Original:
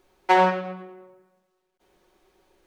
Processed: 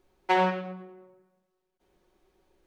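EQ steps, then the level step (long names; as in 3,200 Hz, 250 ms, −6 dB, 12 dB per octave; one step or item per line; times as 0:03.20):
dynamic equaliser 2,900 Hz, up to +5 dB, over −38 dBFS, Q 0.93
low-shelf EQ 340 Hz +7.5 dB
−8.0 dB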